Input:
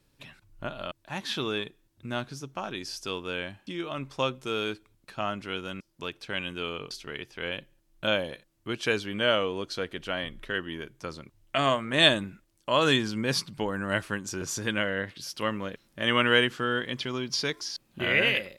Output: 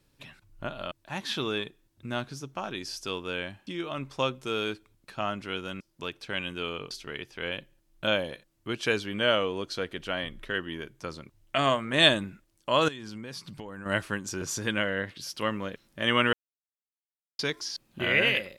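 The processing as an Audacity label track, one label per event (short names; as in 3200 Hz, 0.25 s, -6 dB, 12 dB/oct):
12.880000	13.860000	compressor 10:1, threshold -36 dBFS
16.330000	17.390000	mute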